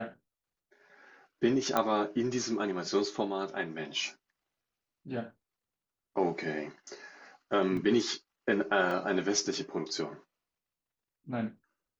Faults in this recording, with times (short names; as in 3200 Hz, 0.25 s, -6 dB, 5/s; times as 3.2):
1.77 pop -13 dBFS
7.77 gap 2.8 ms
8.91 gap 2.8 ms